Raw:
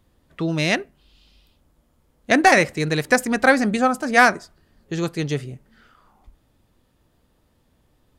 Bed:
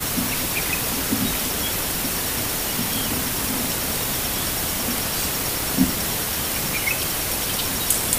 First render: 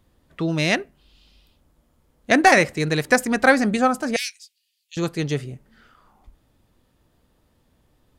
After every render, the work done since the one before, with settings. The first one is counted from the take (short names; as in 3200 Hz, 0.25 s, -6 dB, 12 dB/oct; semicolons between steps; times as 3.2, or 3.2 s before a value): 4.16–4.97 steep high-pass 2500 Hz 48 dB/oct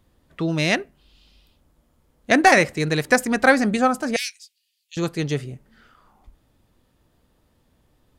nothing audible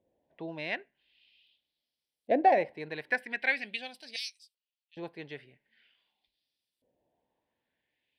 LFO band-pass saw up 0.44 Hz 530–7600 Hz; fixed phaser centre 3000 Hz, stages 4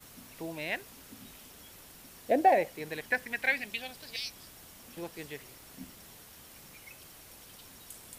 add bed -28 dB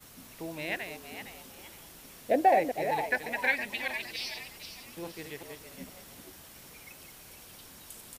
reverse delay 0.194 s, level -6 dB; on a send: frequency-shifting echo 0.462 s, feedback 31%, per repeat +110 Hz, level -10 dB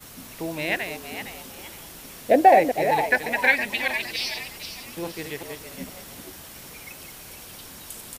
gain +8.5 dB